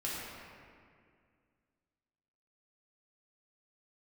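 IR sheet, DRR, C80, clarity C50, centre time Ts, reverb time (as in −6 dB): −7.5 dB, −0.5 dB, −2.5 dB, 139 ms, 2.1 s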